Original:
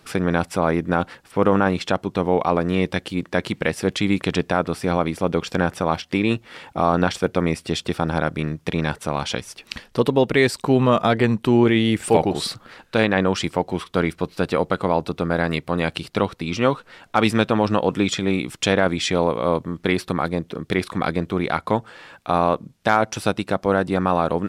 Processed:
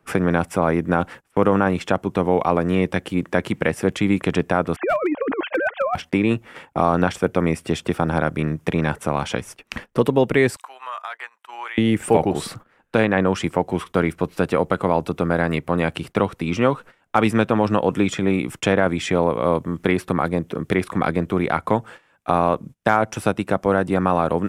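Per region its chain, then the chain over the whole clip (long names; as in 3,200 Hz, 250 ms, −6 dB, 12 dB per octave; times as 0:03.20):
0:04.76–0:05.95: three sine waves on the formant tracks + compressor whose output falls as the input rises −23 dBFS, ratio −0.5 + gain into a clipping stage and back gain 17 dB
0:10.56–0:11.78: high-pass filter 960 Hz 24 dB per octave + downward compressor 4 to 1, threshold −35 dBFS
whole clip: noise gate −38 dBFS, range −21 dB; parametric band 4,300 Hz −10.5 dB 0.83 octaves; multiband upward and downward compressor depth 40%; level +1 dB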